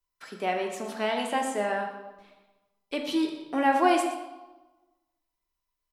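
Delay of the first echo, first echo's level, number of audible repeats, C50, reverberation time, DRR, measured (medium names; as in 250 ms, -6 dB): 120 ms, -13.5 dB, 1, 5.0 dB, 1.2 s, 1.5 dB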